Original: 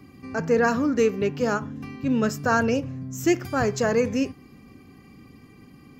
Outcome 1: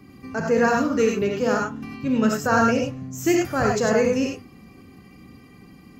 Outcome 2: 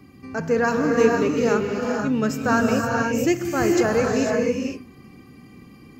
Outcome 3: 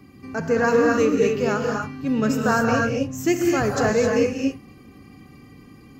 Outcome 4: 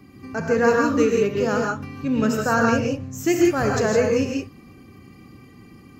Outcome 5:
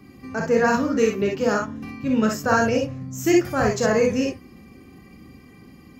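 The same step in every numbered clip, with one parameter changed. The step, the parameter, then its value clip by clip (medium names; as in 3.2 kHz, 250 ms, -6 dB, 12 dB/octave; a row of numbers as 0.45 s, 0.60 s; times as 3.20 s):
gated-style reverb, gate: 120 ms, 530 ms, 290 ms, 190 ms, 80 ms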